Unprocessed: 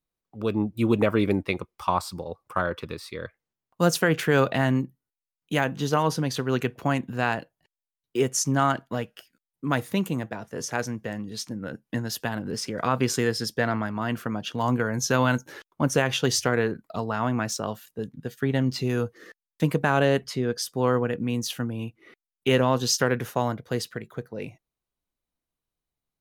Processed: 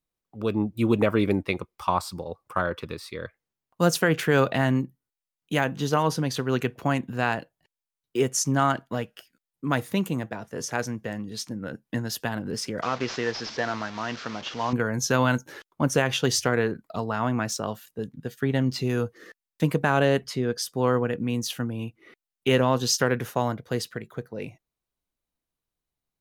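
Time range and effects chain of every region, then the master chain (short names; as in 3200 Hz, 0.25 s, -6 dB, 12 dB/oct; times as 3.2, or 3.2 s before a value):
12.82–14.73 delta modulation 32 kbps, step -32 dBFS + low shelf 280 Hz -11 dB
whole clip: dry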